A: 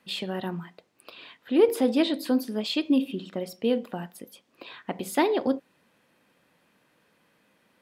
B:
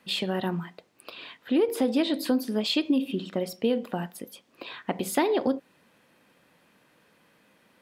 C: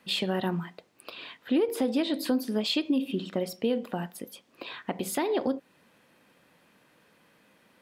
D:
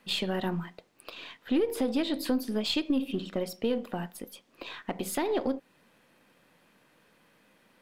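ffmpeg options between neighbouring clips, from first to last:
ffmpeg -i in.wav -af "acompressor=threshold=-24dB:ratio=5,volume=3.5dB" out.wav
ffmpeg -i in.wav -af "alimiter=limit=-17dB:level=0:latency=1:release=333" out.wav
ffmpeg -i in.wav -af "aeval=exprs='if(lt(val(0),0),0.708*val(0),val(0))':channel_layout=same" out.wav

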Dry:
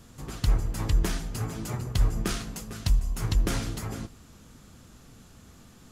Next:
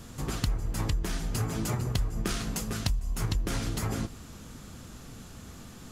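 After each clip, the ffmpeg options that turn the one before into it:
ffmpeg -i in.wav -af "acompressor=threshold=-32dB:ratio=6,volume=6dB" out.wav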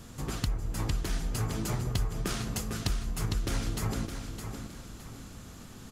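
ffmpeg -i in.wav -af "aecho=1:1:613|1226|1839|2452:0.422|0.148|0.0517|0.0181,volume=-2dB" out.wav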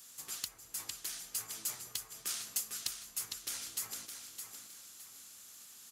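ffmpeg -i in.wav -af "aderivative,volume=2.5dB" out.wav

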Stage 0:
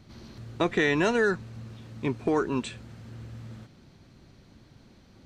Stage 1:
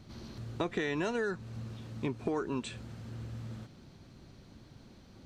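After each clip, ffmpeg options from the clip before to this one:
ffmpeg -i in.wav -af "acompressor=threshold=-32dB:ratio=3,equalizer=frequency=2000:width_type=o:width=0.77:gain=-2.5" out.wav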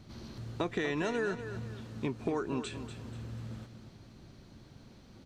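ffmpeg -i in.wav -af "aecho=1:1:242|484|726|968:0.299|0.107|0.0387|0.0139" out.wav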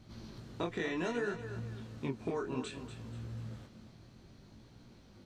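ffmpeg -i in.wav -af "flanger=delay=17:depth=7.4:speed=0.62" out.wav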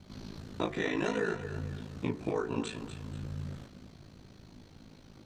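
ffmpeg -i in.wav -af "aeval=exprs='val(0)*sin(2*PI*27*n/s)':channel_layout=same,bandreject=frequency=74.03:width_type=h:width=4,bandreject=frequency=148.06:width_type=h:width=4,bandreject=frequency=222.09:width_type=h:width=4,bandreject=frequency=296.12:width_type=h:width=4,bandreject=frequency=370.15:width_type=h:width=4,bandreject=frequency=444.18:width_type=h:width=4,bandreject=frequency=518.21:width_type=h:width=4,bandreject=frequency=592.24:width_type=h:width=4,bandreject=frequency=666.27:width_type=h:width=4,bandreject=frequency=740.3:width_type=h:width=4,bandreject=frequency=814.33:width_type=h:width=4,bandreject=frequency=888.36:width_type=h:width=4,bandreject=frequency=962.39:width_type=h:width=4,bandreject=frequency=1036.42:width_type=h:width=4,bandreject=frequency=1110.45:width_type=h:width=4,bandreject=frequency=1184.48:width_type=h:width=4,bandreject=frequency=1258.51:width_type=h:width=4,bandreject=frequency=1332.54:width_type=h:width=4,bandreject=frequency=1406.57:width_type=h:width=4,bandreject=frequency=1480.6:width_type=h:width=4,bandreject=frequency=1554.63:width_type=h:width=4,bandreject=frequency=1628.66:width_type=h:width=4,bandreject=frequency=1702.69:width_type=h:width=4,bandreject=frequency=1776.72:width_type=h:width=4,bandreject=frequency=1850.75:width_type=h:width=4,bandreject=frequency=1924.78:width_type=h:width=4,bandreject=frequency=1998.81:width_type=h:width=4,bandreject=frequency=2072.84:width_type=h:width=4,bandreject=frequency=2146.87:width_type=h:width=4,volume=7dB" out.wav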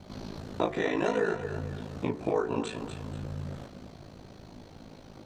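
ffmpeg -i in.wav -filter_complex "[0:a]asplit=2[link_01][link_02];[link_02]acompressor=threshold=-40dB:ratio=6,volume=-1.5dB[link_03];[link_01][link_03]amix=inputs=2:normalize=0,equalizer=frequency=660:width_type=o:width=1.5:gain=8,volume=-2dB" out.wav

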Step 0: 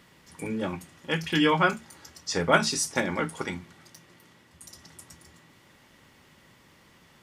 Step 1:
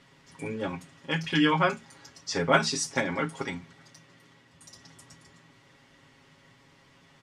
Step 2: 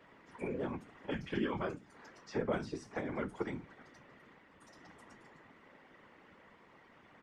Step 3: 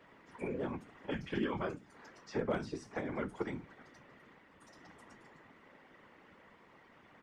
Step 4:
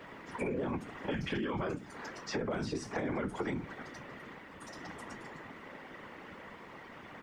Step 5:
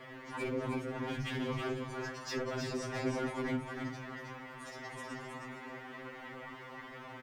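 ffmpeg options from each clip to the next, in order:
ffmpeg -i in.wav -af "lowpass=7300,aecho=1:1:7.3:0.65,volume=-2.5dB" out.wav
ffmpeg -i in.wav -filter_complex "[0:a]acrossover=split=370|4300[link_01][link_02][link_03];[link_01]acompressor=threshold=-33dB:ratio=4[link_04];[link_02]acompressor=threshold=-43dB:ratio=4[link_05];[link_03]acompressor=threshold=-45dB:ratio=4[link_06];[link_04][link_05][link_06]amix=inputs=3:normalize=0,acrossover=split=190 2300:gain=0.0708 1 0.126[link_07][link_08][link_09];[link_07][link_08][link_09]amix=inputs=3:normalize=0,afftfilt=real='hypot(re,im)*cos(2*PI*random(0))':imag='hypot(re,im)*sin(2*PI*random(1))':win_size=512:overlap=0.75,volume=7dB" out.wav
ffmpeg -i in.wav -af "asoftclip=type=hard:threshold=-24.5dB" out.wav
ffmpeg -i in.wav -af "alimiter=level_in=9.5dB:limit=-24dB:level=0:latency=1:release=24,volume=-9.5dB,acompressor=threshold=-43dB:ratio=6,volume=11.5dB" out.wav
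ffmpeg -i in.wav -filter_complex "[0:a]asoftclip=type=hard:threshold=-34dB,asplit=2[link_01][link_02];[link_02]aecho=0:1:317:0.596[link_03];[link_01][link_03]amix=inputs=2:normalize=0,afftfilt=real='re*2.45*eq(mod(b,6),0)':imag='im*2.45*eq(mod(b,6),0)':win_size=2048:overlap=0.75,volume=3dB" out.wav

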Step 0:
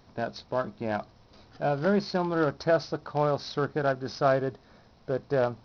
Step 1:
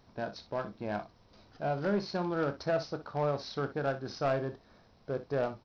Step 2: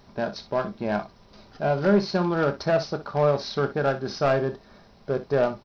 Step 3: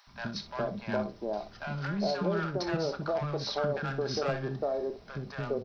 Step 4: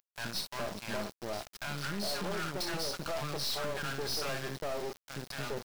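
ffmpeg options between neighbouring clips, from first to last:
ffmpeg -i in.wav -filter_complex "[0:a]asoftclip=type=tanh:threshold=-16.5dB,asplit=2[link_01][link_02];[link_02]aecho=0:1:29|61:0.251|0.211[link_03];[link_01][link_03]amix=inputs=2:normalize=0,volume=-5dB" out.wav
ffmpeg -i in.wav -af "aecho=1:1:5:0.34,volume=8.5dB" out.wav
ffmpeg -i in.wav -filter_complex "[0:a]acompressor=threshold=-25dB:ratio=6,acrossover=split=280|890[link_01][link_02][link_03];[link_01]adelay=70[link_04];[link_02]adelay=410[link_05];[link_04][link_05][link_03]amix=inputs=3:normalize=0" out.wav
ffmpeg -i in.wav -af "crystalizer=i=7.5:c=0,aeval=exprs='val(0)*gte(abs(val(0)),0.0158)':channel_layout=same,aeval=exprs='(tanh(44.7*val(0)+0.8)-tanh(0.8))/44.7':channel_layout=same" out.wav

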